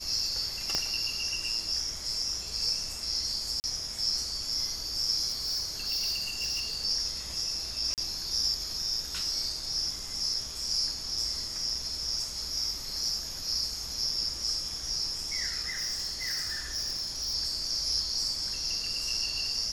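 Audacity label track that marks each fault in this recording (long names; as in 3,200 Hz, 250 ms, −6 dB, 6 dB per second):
0.750000	0.750000	click −14 dBFS
3.600000	3.640000	drop-out 39 ms
5.280000	6.850000	clipping −27 dBFS
7.940000	7.980000	drop-out 38 ms
15.700000	17.350000	clipping −28.5 dBFS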